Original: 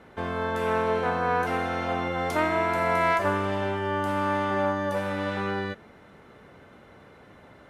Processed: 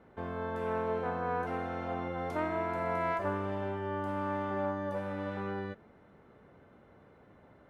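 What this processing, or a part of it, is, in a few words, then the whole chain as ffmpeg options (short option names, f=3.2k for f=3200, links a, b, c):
through cloth: -af "highshelf=f=2k:g=-12.5,volume=-6.5dB"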